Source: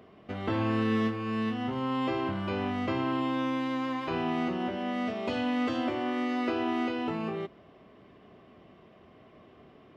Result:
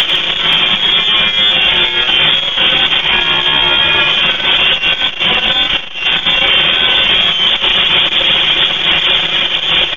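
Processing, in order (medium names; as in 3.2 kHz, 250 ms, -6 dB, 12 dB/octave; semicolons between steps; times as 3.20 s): one-bit comparator; bass shelf 110 Hz +7.5 dB; frequency inversion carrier 3.5 kHz; reverb removal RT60 1.2 s; comb 5.4 ms, depth 38%; on a send: multi-tap echo 94/96/155/528/533/540 ms -15/-7/-5.5/-6.5/-17.5/-19.5 dB; on the sum: simulated room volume 520 m³, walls furnished, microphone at 0.82 m; loudness maximiser +25.5 dB; transformer saturation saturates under 220 Hz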